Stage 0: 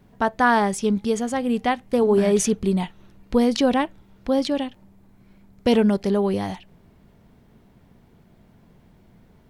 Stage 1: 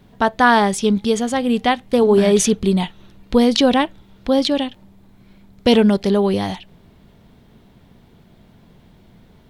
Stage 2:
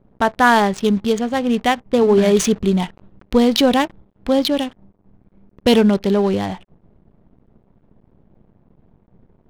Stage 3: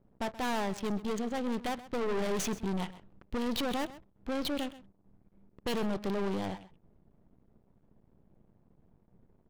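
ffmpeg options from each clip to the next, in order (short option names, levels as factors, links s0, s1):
-af "equalizer=f=3600:t=o:w=0.69:g=7,volume=1.68"
-af "acrusher=bits=7:dc=4:mix=0:aa=0.000001,adynamicsmooth=sensitivity=3.5:basefreq=890"
-af "aeval=exprs='(tanh(14.1*val(0)+0.65)-tanh(0.65))/14.1':c=same,aecho=1:1:129:0.15,volume=0.422"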